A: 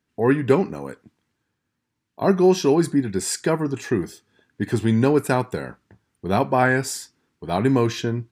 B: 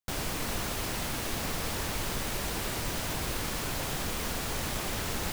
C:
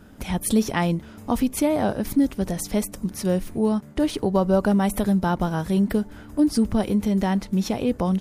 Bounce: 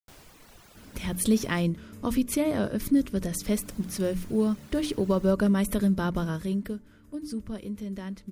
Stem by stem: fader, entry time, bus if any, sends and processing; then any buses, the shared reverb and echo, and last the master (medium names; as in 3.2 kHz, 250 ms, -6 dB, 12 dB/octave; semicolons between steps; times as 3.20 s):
mute
-17.0 dB, 0.00 s, muted 1.60–3.43 s, no send, reverb removal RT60 1.5 s
6.22 s -2.5 dB -> 6.84 s -13 dB, 0.75 s, no send, peaking EQ 790 Hz -14.5 dB 0.38 oct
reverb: none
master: hum notches 60/120/180/240/300 Hz